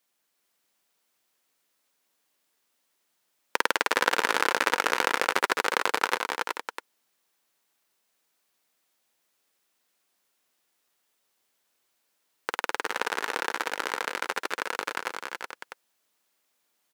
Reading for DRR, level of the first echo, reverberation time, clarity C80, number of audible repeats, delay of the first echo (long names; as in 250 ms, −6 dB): no reverb audible, −11.5 dB, no reverb audible, no reverb audible, 4, 213 ms